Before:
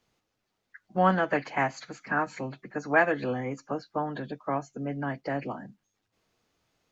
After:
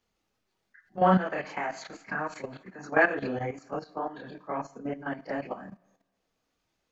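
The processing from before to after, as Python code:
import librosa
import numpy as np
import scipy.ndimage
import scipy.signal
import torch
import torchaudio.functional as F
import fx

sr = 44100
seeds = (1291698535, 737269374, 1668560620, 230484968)

y = fx.dynamic_eq(x, sr, hz=100.0, q=1.1, threshold_db=-49.0, ratio=4.0, max_db=-6)
y = fx.chorus_voices(y, sr, voices=4, hz=1.2, base_ms=29, depth_ms=3.3, mix_pct=60)
y = fx.rev_double_slope(y, sr, seeds[0], early_s=0.54, late_s=1.7, knee_db=-16, drr_db=12.0)
y = fx.level_steps(y, sr, step_db=12)
y = F.gain(torch.from_numpy(y), 5.0).numpy()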